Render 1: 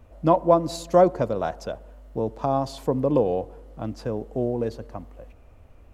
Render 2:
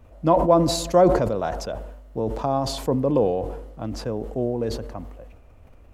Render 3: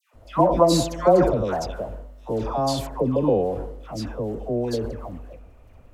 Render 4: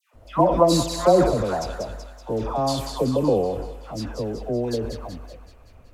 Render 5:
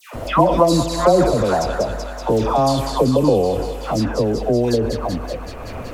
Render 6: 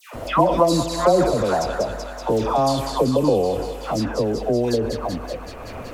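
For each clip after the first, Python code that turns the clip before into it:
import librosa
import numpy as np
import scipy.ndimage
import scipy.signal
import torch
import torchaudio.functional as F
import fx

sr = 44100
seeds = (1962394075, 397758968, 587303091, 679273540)

y1 = fx.sustainer(x, sr, db_per_s=51.0)
y2 = fx.dispersion(y1, sr, late='lows', ms=141.0, hz=1200.0)
y3 = fx.echo_wet_highpass(y2, sr, ms=189, feedback_pct=56, hz=1500.0, wet_db=-5.5)
y4 = fx.band_squash(y3, sr, depth_pct=70)
y4 = y4 * librosa.db_to_amplitude(6.0)
y5 = fx.low_shelf(y4, sr, hz=170.0, db=-4.5)
y5 = y5 * librosa.db_to_amplitude(-2.0)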